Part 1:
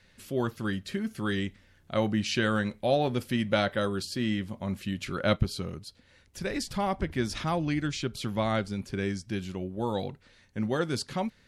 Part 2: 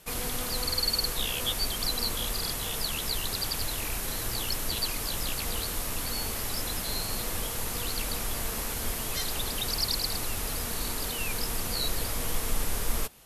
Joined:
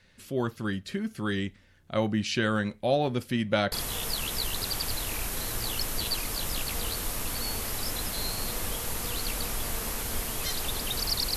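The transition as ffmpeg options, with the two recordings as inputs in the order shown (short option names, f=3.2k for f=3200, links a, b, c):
-filter_complex "[0:a]apad=whole_dur=11.36,atrim=end=11.36,atrim=end=3.722[a];[1:a]atrim=start=2.428:end=10.07[b];[a][b]acrossfade=d=0.004:c1=hsin:c2=hsin"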